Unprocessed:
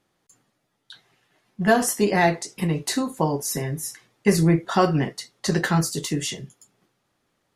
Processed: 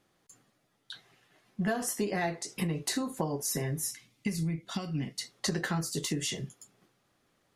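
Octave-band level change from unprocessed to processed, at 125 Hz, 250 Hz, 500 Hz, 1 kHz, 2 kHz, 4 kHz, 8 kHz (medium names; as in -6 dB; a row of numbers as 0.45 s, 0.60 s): -10.0 dB, -10.5 dB, -12.5 dB, -14.0 dB, -11.0 dB, -6.0 dB, -6.0 dB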